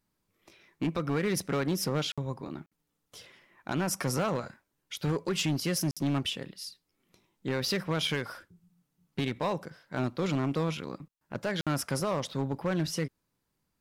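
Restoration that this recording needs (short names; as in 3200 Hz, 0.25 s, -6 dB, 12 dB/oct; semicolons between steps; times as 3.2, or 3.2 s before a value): clip repair -23.5 dBFS; interpolate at 2.12/2.66/5.91/11.61, 56 ms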